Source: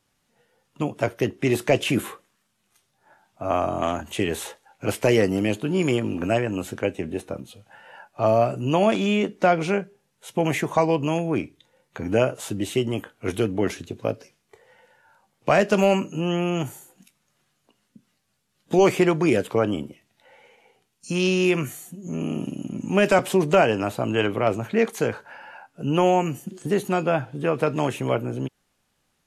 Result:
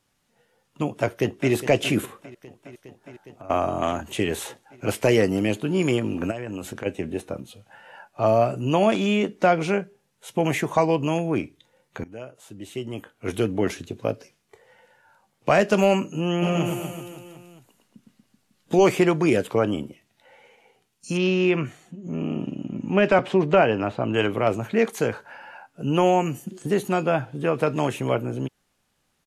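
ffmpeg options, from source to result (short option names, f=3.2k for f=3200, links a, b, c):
-filter_complex "[0:a]asplit=2[a][b];[b]afade=t=in:st=0.83:d=0.01,afade=t=out:st=1.52:d=0.01,aecho=0:1:410|820|1230|1640|2050|2460|2870|3280|3690|4100|4510|4920:0.237137|0.177853|0.13339|0.100042|0.0750317|0.0562738|0.0422054|0.031654|0.0237405|0.0178054|0.013354|0.0100155[c];[a][c]amix=inputs=2:normalize=0,asettb=1/sr,asplit=3[d][e][f];[d]atrim=end=2.054[g];[e]atrim=start=2.05:end=3.5,asetpts=PTS-STARTPTS,afade=t=in:d=0.004:c=qsin,afade=t=out:st=1.446:d=0.004:c=qsin,acompressor=threshold=-37dB:ratio=10:attack=3.2:release=140:knee=1:detection=peak[h];[f]atrim=start=3.496[i];[g][h]acrossfade=d=0.004:c1=hsin:c2=qsin[j];[j][i]acrossfade=d=0.004:c1=qsin:c2=hsin,asplit=3[k][l][m];[k]afade=t=out:st=6.3:d=0.02[n];[l]acompressor=threshold=-27dB:ratio=12:attack=3.2:release=140:knee=1:detection=peak,afade=t=in:st=6.3:d=0.02,afade=t=out:st=6.85:d=0.02[o];[m]afade=t=in:st=6.85:d=0.02[p];[n][o][p]amix=inputs=3:normalize=0,asplit=3[q][r][s];[q]afade=t=out:st=16.41:d=0.02[t];[r]aecho=1:1:110|236.5|382|549.3|741.7|962.9:0.631|0.398|0.251|0.158|0.1|0.0631,afade=t=in:st=16.41:d=0.02,afade=t=out:st=18.75:d=0.02[u];[s]afade=t=in:st=18.75:d=0.02[v];[t][u][v]amix=inputs=3:normalize=0,asettb=1/sr,asplit=3[w][x][y];[w]atrim=end=21.174[z];[x]atrim=start=21.17:end=24.14,asetpts=PTS-STARTPTS,afade=t=in:d=0.004:c=qsin,afade=t=out:st=2.966:d=0.004:c=qsin,lowpass=3.2k[aa];[y]atrim=start=24.136[ab];[z][aa]acrossfade=d=0.004:c1=hsin:c2=qsin[ac];[ac][ab]acrossfade=d=0.004:c1=qsin:c2=hsin,asplit=2[ad][ae];[ad]atrim=end=12.04,asetpts=PTS-STARTPTS,afade=t=out:st=12.036:d=0.004:c=hsin:silence=0.112202[af];[ae]atrim=start=12.04,asetpts=PTS-STARTPTS,afade=t=in:d=1.4:c=qua:silence=0.112202[ag];[af][ag]concat=n=2:v=0:a=1"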